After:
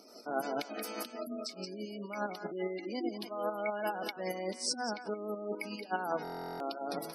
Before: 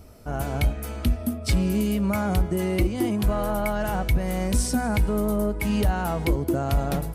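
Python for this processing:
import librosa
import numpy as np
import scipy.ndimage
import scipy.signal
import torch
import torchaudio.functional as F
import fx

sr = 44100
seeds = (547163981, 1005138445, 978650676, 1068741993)

p1 = fx.peak_eq(x, sr, hz=5000.0, db=11.0, octaves=0.7)
p2 = fx.over_compress(p1, sr, threshold_db=-28.0, ratio=-1.0)
p3 = p2 + fx.echo_thinned(p2, sr, ms=179, feedback_pct=15, hz=930.0, wet_db=-7.0, dry=0)
p4 = fx.volume_shaper(p3, sr, bpm=146, per_beat=2, depth_db=-7, release_ms=153.0, shape='slow start')
p5 = scipy.signal.sosfilt(scipy.signal.butter(4, 260.0, 'highpass', fs=sr, output='sos'), p4)
p6 = fx.quant_float(p5, sr, bits=4)
p7 = fx.spec_gate(p6, sr, threshold_db=-20, keep='strong')
p8 = fx.buffer_glitch(p7, sr, at_s=(6.23,), block=1024, repeats=15)
y = F.gain(torch.from_numpy(p8), -2.5).numpy()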